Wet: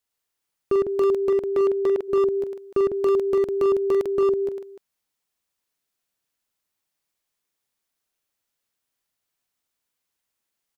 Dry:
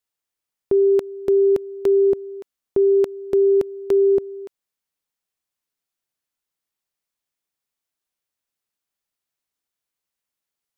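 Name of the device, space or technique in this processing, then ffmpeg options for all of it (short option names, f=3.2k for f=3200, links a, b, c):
clipper into limiter: -filter_complex "[0:a]asplit=3[a][b][c];[a]afade=t=out:st=1.27:d=0.02[d];[b]bass=f=250:g=-6,treble=f=4k:g=-12,afade=t=in:st=1.27:d=0.02,afade=t=out:st=1.97:d=0.02[e];[c]afade=t=in:st=1.97:d=0.02[f];[d][e][f]amix=inputs=3:normalize=0,aecho=1:1:44|108|154|304:0.355|0.708|0.398|0.282,asoftclip=type=hard:threshold=-16dB,alimiter=limit=-18dB:level=0:latency=1:release=84,volume=1.5dB"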